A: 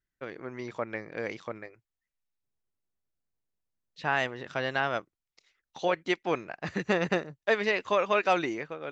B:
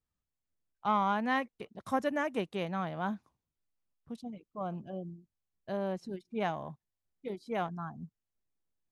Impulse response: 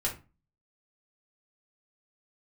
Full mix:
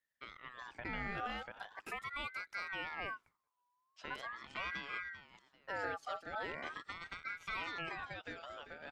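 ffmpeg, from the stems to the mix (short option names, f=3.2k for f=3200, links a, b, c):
-filter_complex "[0:a]acompressor=threshold=-32dB:ratio=10,volume=-8.5dB,asplit=2[a][b];[b]volume=-12.5dB[c];[1:a]acompressor=threshold=-30dB:ratio=6,alimiter=level_in=6dB:limit=-24dB:level=0:latency=1:release=192,volume=-6dB,volume=-0.5dB[d];[c]aecho=0:1:392|784|1176|1568|1960:1|0.37|0.137|0.0507|0.0187[e];[a][d][e]amix=inputs=3:normalize=0,aeval=exprs='val(0)*sin(2*PI*1400*n/s+1400*0.3/0.41*sin(2*PI*0.41*n/s))':c=same"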